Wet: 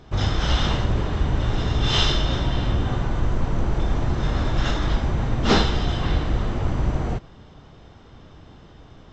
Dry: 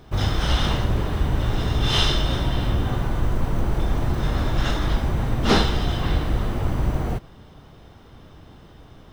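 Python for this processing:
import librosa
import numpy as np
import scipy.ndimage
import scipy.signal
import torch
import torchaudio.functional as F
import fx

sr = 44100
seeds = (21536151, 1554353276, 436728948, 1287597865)

y = fx.brickwall_lowpass(x, sr, high_hz=7900.0)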